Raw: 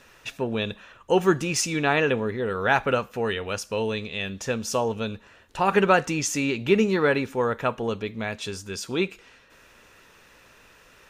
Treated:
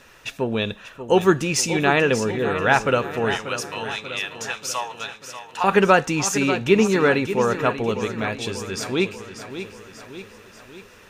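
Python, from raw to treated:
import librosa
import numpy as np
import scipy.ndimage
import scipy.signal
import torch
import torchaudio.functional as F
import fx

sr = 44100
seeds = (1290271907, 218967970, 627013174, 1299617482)

y = fx.highpass(x, sr, hz=830.0, slope=24, at=(3.35, 5.64))
y = fx.echo_feedback(y, sr, ms=588, feedback_pct=55, wet_db=-11.0)
y = y * librosa.db_to_amplitude(3.5)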